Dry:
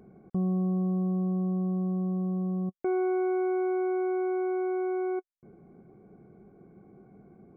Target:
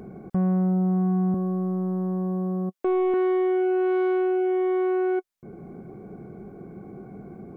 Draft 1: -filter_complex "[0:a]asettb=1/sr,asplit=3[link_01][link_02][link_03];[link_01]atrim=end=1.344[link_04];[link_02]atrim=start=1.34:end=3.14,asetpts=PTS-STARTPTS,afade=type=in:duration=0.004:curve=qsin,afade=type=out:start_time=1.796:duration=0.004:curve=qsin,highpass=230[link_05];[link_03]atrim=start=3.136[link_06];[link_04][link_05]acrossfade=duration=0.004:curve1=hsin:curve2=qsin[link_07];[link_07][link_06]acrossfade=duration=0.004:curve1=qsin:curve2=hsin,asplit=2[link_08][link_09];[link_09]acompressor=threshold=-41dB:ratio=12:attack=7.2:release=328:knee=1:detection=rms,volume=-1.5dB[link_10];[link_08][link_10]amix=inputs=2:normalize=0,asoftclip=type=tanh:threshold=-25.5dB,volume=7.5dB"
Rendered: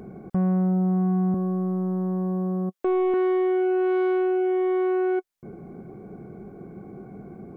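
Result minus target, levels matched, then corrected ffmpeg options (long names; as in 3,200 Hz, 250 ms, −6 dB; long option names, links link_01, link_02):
downward compressor: peak gain reduction −6 dB
-filter_complex "[0:a]asettb=1/sr,asplit=3[link_01][link_02][link_03];[link_01]atrim=end=1.344[link_04];[link_02]atrim=start=1.34:end=3.14,asetpts=PTS-STARTPTS,afade=type=in:duration=0.004:curve=qsin,afade=type=out:start_time=1.796:duration=0.004:curve=qsin,highpass=230[link_05];[link_03]atrim=start=3.136[link_06];[link_04][link_05]acrossfade=duration=0.004:curve1=hsin:curve2=qsin[link_07];[link_07][link_06]acrossfade=duration=0.004:curve1=qsin:curve2=hsin,asplit=2[link_08][link_09];[link_09]acompressor=threshold=-47.5dB:ratio=12:attack=7.2:release=328:knee=1:detection=rms,volume=-1.5dB[link_10];[link_08][link_10]amix=inputs=2:normalize=0,asoftclip=type=tanh:threshold=-25.5dB,volume=7.5dB"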